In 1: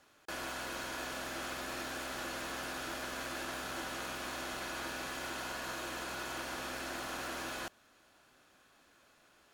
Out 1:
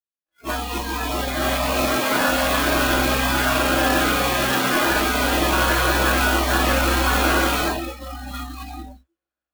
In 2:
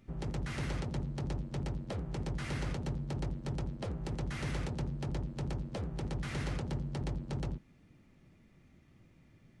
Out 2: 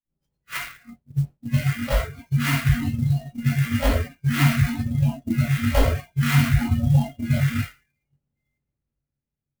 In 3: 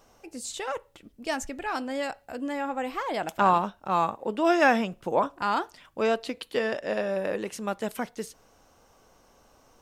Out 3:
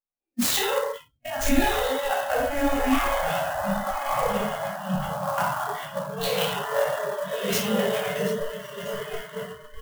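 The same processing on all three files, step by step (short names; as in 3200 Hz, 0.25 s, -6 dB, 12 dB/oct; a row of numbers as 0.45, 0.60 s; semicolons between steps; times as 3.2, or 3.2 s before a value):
stepped spectrum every 50 ms; negative-ratio compressor -40 dBFS, ratio -1; diffused feedback echo 1.239 s, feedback 40%, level -3 dB; shoebox room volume 430 m³, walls mixed, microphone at 2.3 m; spectral noise reduction 29 dB; downsampling 22050 Hz; expander -35 dBFS; clock jitter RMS 0.029 ms; normalise peaks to -6 dBFS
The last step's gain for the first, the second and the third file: +15.0, +16.0, +6.0 dB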